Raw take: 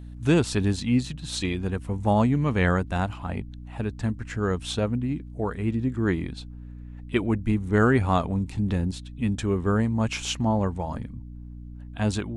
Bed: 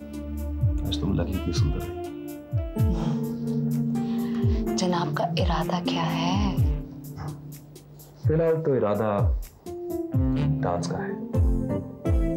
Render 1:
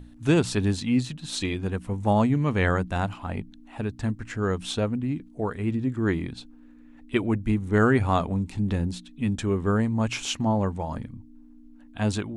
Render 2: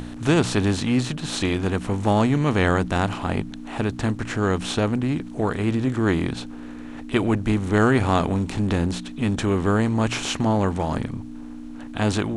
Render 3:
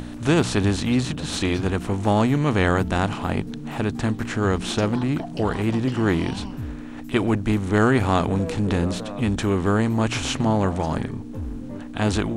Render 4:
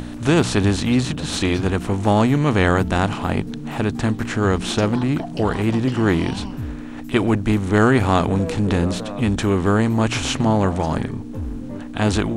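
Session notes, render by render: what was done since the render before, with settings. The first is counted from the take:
mains-hum notches 60/120/180 Hz
compressor on every frequency bin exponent 0.6
mix in bed −10 dB
level +3 dB; brickwall limiter −3 dBFS, peak gain reduction 1.5 dB

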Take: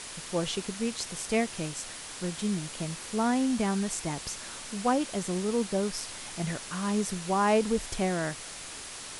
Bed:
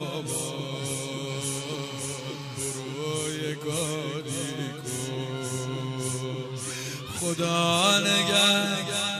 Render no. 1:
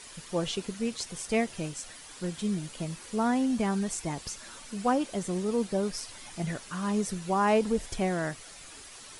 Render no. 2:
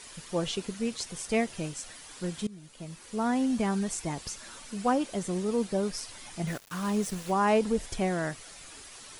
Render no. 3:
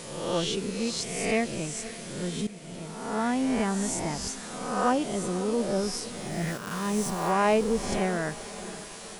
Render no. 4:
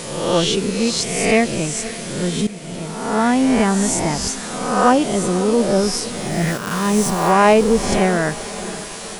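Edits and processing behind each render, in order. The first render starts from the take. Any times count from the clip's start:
broadband denoise 9 dB, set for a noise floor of −42 dBFS
0:02.47–0:03.43: fade in, from −20.5 dB; 0:06.47–0:07.32: centre clipping without the shift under −39 dBFS
peak hold with a rise ahead of every peak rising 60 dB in 0.99 s; feedback delay with all-pass diffusion 522 ms, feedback 55%, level −15 dB
level +11 dB; brickwall limiter −2 dBFS, peak gain reduction 1.5 dB

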